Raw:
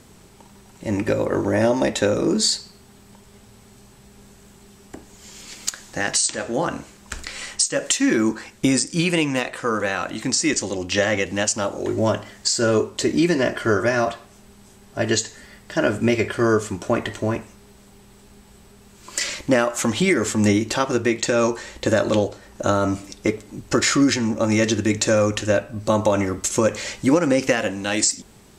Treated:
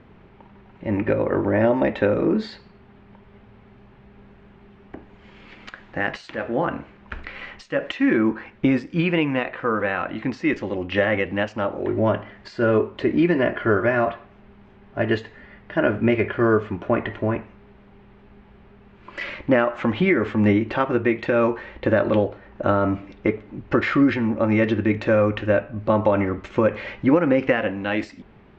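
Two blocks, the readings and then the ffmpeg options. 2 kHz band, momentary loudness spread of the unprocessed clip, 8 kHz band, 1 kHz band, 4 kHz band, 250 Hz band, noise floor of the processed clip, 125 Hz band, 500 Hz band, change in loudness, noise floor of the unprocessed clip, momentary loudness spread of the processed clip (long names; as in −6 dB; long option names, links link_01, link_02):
−0.5 dB, 9 LU, below −30 dB, 0.0 dB, −11.5 dB, 0.0 dB, −50 dBFS, 0.0 dB, 0.0 dB, −1.0 dB, −49 dBFS, 10 LU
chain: -af "lowpass=frequency=2600:width=0.5412,lowpass=frequency=2600:width=1.3066"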